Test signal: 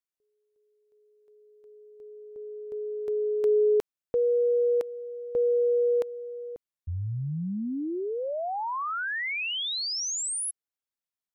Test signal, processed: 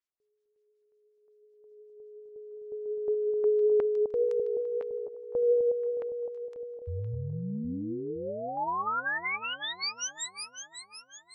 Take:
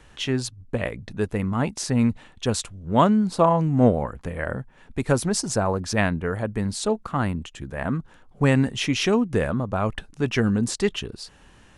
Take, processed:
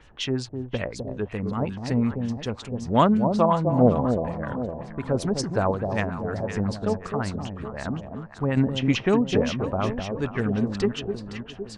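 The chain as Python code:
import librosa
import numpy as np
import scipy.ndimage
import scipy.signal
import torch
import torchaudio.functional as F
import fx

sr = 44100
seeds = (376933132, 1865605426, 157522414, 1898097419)

y = fx.tremolo_random(x, sr, seeds[0], hz=3.5, depth_pct=55)
y = fx.echo_alternate(y, sr, ms=256, hz=870.0, feedback_pct=69, wet_db=-5.5)
y = fx.filter_lfo_lowpass(y, sr, shape='sine', hz=5.4, low_hz=590.0, high_hz=7200.0, q=1.3)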